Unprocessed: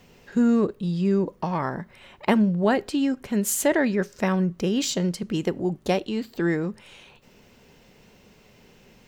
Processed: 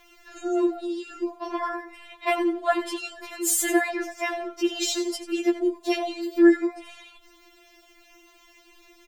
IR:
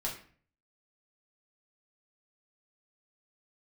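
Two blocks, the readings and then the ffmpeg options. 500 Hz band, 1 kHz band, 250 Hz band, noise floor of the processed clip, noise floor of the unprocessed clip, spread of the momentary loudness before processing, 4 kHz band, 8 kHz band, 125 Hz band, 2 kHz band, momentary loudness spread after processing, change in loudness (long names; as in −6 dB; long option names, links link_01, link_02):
−0.5 dB, 0.0 dB, −2.0 dB, −56 dBFS, −55 dBFS, 9 LU, +1.5 dB, +2.0 dB, below −40 dB, +1.5 dB, 14 LU, −1.0 dB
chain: -filter_complex "[0:a]lowshelf=frequency=400:gain=-4.5,asplit=4[link_01][link_02][link_03][link_04];[link_02]adelay=89,afreqshift=120,volume=-12dB[link_05];[link_03]adelay=178,afreqshift=240,volume=-21.9dB[link_06];[link_04]adelay=267,afreqshift=360,volume=-31.8dB[link_07];[link_01][link_05][link_06][link_07]amix=inputs=4:normalize=0,afftfilt=real='re*4*eq(mod(b,16),0)':imag='im*4*eq(mod(b,16),0)':win_size=2048:overlap=0.75,volume=4dB"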